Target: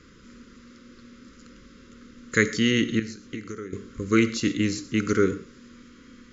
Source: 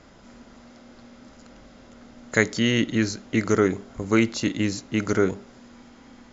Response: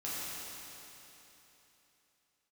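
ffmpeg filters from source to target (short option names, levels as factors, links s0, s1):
-filter_complex "[0:a]asettb=1/sr,asplit=3[s0][s1][s2];[s0]atrim=end=2.994[s3];[s1]atrim=start=2.99:end=3.73,asetpts=PTS-STARTPTS,afade=t=in:d=0.004:c=qsin,afade=t=out:st=0.736:d=0.004:c=qsin,acompressor=threshold=0.0251:ratio=12[s4];[s2]atrim=start=3.726[s5];[s3][s4]acrossfade=d=0.004:c1=hsin:c2=qsin[s6];[s6][s5]acrossfade=d=0.004:c1=qsin:c2=hsin,asuperstop=centerf=750:order=8:qfactor=1.3,asplit=2[s7][s8];[1:a]atrim=start_sample=2205,atrim=end_sample=6174[s9];[s8][s9]afir=irnorm=-1:irlink=0,volume=0.299[s10];[s7][s10]amix=inputs=2:normalize=0,volume=0.841"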